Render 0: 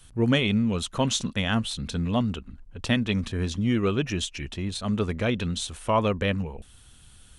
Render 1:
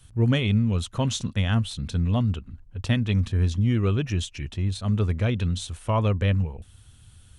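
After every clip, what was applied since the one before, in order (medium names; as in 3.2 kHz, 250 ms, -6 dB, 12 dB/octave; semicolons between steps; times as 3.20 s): peaking EQ 97 Hz +12.5 dB 1.1 oct; trim -3.5 dB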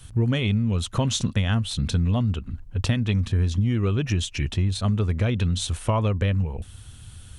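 compression, threshold -27 dBFS, peak gain reduction 10.5 dB; trim +8 dB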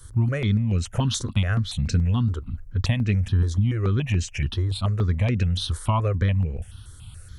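stepped phaser 7 Hz 710–3400 Hz; trim +2 dB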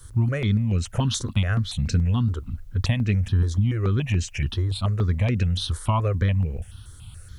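word length cut 12-bit, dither triangular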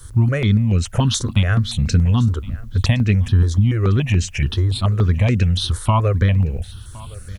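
delay 1064 ms -21.5 dB; trim +6 dB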